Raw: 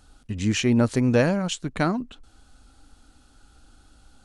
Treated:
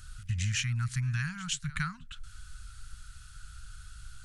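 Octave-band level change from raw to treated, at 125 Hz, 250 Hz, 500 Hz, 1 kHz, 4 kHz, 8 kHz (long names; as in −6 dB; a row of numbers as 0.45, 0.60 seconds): −4.5 dB, −20.0 dB, below −40 dB, −12.0 dB, −5.0 dB, −2.5 dB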